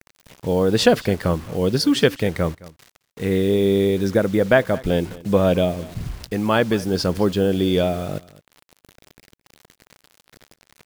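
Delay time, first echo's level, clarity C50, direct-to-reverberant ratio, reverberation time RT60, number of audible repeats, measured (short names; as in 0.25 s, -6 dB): 0.216 s, -20.5 dB, none, none, none, 1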